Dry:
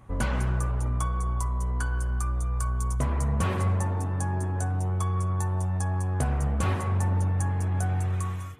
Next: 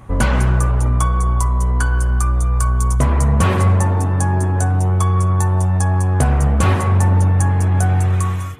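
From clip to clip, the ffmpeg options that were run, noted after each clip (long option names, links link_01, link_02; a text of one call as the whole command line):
ffmpeg -i in.wav -af "acontrast=85,volume=4.5dB" out.wav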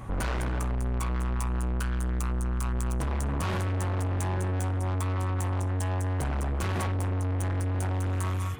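ffmpeg -i in.wav -af "alimiter=limit=-10.5dB:level=0:latency=1,asoftclip=type=tanh:threshold=-27dB" out.wav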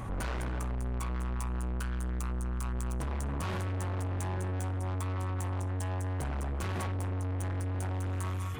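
ffmpeg -i in.wav -af "alimiter=level_in=11.5dB:limit=-24dB:level=0:latency=1:release=16,volume=-11.5dB,volume=3.5dB" out.wav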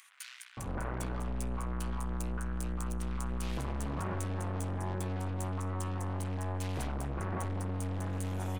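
ffmpeg -i in.wav -filter_complex "[0:a]acrossover=split=140[link_01][link_02];[link_01]aeval=exprs='clip(val(0),-1,0.00631)':channel_layout=same[link_03];[link_03][link_02]amix=inputs=2:normalize=0,acrossover=split=2000[link_04][link_05];[link_04]adelay=570[link_06];[link_06][link_05]amix=inputs=2:normalize=0" out.wav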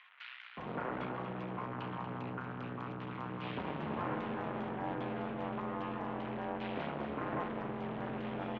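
ffmpeg -i in.wav -filter_complex "[0:a]asplit=9[link_01][link_02][link_03][link_04][link_05][link_06][link_07][link_08][link_09];[link_02]adelay=235,afreqshift=-74,volume=-9dB[link_10];[link_03]adelay=470,afreqshift=-148,volume=-12.9dB[link_11];[link_04]adelay=705,afreqshift=-222,volume=-16.8dB[link_12];[link_05]adelay=940,afreqshift=-296,volume=-20.6dB[link_13];[link_06]adelay=1175,afreqshift=-370,volume=-24.5dB[link_14];[link_07]adelay=1410,afreqshift=-444,volume=-28.4dB[link_15];[link_08]adelay=1645,afreqshift=-518,volume=-32.3dB[link_16];[link_09]adelay=1880,afreqshift=-592,volume=-36.1dB[link_17];[link_01][link_10][link_11][link_12][link_13][link_14][link_15][link_16][link_17]amix=inputs=9:normalize=0,highpass=frequency=220:width_type=q:width=0.5412,highpass=frequency=220:width_type=q:width=1.307,lowpass=frequency=3400:width_type=q:width=0.5176,lowpass=frequency=3400:width_type=q:width=0.7071,lowpass=frequency=3400:width_type=q:width=1.932,afreqshift=-60,volume=2dB" out.wav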